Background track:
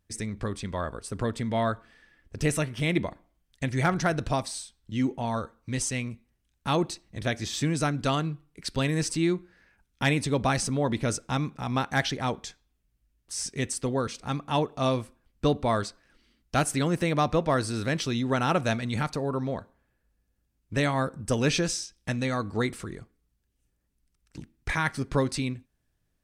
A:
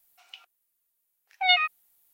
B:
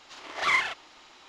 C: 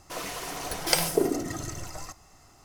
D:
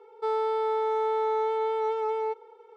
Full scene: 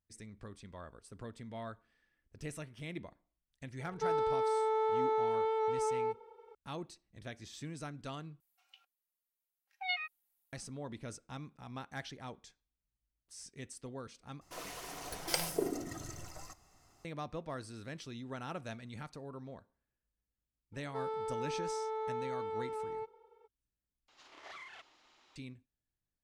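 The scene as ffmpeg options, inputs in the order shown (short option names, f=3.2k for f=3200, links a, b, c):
-filter_complex "[4:a]asplit=2[a][b];[0:a]volume=-17.5dB[c];[1:a]aecho=1:1:3.7:0.63[d];[2:a]acompressor=threshold=-33dB:ratio=16:attack=12:release=131:knee=1:detection=rms[e];[c]asplit=4[f][g][h][i];[f]atrim=end=8.404[j];[d]atrim=end=2.13,asetpts=PTS-STARTPTS,volume=-16.5dB[k];[g]atrim=start=10.526:end=14.414[l];[3:a]atrim=end=2.64,asetpts=PTS-STARTPTS,volume=-10dB[m];[h]atrim=start=17.046:end=24.084[n];[e]atrim=end=1.28,asetpts=PTS-STARTPTS,volume=-14dB[o];[i]atrim=start=25.356[p];[a]atrim=end=2.76,asetpts=PTS-STARTPTS,volume=-5dB,afade=t=in:d=0.004:c=hsin,afade=t=out:st=2.756:d=0.004:c=hsin,adelay=3790[q];[b]atrim=end=2.76,asetpts=PTS-STARTPTS,volume=-11.5dB,afade=t=in:d=0.02,afade=t=out:st=2.74:d=0.02,adelay=20720[r];[j][k]acrossfade=d=0.004:c1=hsin:c2=hsin[s];[s][l]acrossfade=d=0.004:c1=hsin:c2=hsin[t];[t][m]acrossfade=d=0.004:c1=hsin:c2=hsin[u];[u][n]acrossfade=d=0.004:c1=hsin:c2=hsin[v];[v][o]acrossfade=d=0.004:c1=hsin:c2=hsin[w];[w][p]acrossfade=d=0.004:c1=hsin:c2=hsin[x];[x][q][r]amix=inputs=3:normalize=0"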